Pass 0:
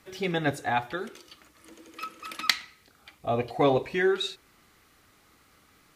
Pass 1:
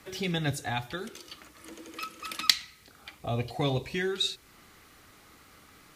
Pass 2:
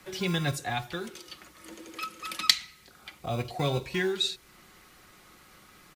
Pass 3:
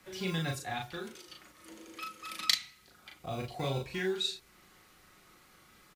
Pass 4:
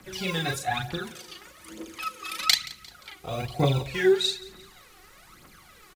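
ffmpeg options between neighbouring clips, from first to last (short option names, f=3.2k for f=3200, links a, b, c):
-filter_complex "[0:a]acrossover=split=180|3000[a][b][c];[b]acompressor=threshold=-48dB:ratio=2[d];[a][d][c]amix=inputs=3:normalize=0,volume=5dB"
-filter_complex "[0:a]aecho=1:1:5.5:0.39,acrossover=split=230|2800[a][b][c];[a]acrusher=samples=36:mix=1:aa=0.000001[d];[d][b][c]amix=inputs=3:normalize=0"
-filter_complex "[0:a]asplit=2[a][b];[b]adelay=37,volume=-3dB[c];[a][c]amix=inputs=2:normalize=0,volume=-7dB"
-af "aphaser=in_gain=1:out_gain=1:delay=2.8:decay=0.65:speed=1.1:type=triangular,aecho=1:1:175|350|525:0.1|0.042|0.0176,volume=5.5dB"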